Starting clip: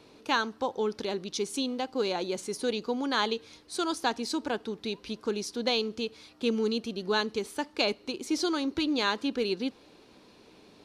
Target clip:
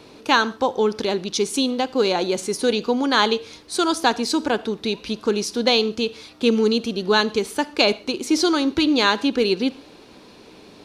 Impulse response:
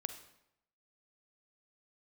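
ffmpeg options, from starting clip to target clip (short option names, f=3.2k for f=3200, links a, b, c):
-filter_complex "[0:a]asplit=2[a][b];[1:a]atrim=start_sample=2205,atrim=end_sample=6615[c];[b][c]afir=irnorm=-1:irlink=0,volume=-3.5dB[d];[a][d]amix=inputs=2:normalize=0,volume=6dB"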